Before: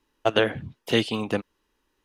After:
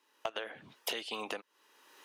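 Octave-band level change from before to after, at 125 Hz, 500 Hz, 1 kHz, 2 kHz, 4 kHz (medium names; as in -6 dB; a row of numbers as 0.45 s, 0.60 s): -30.0 dB, -17.0 dB, -11.0 dB, -12.5 dB, -10.5 dB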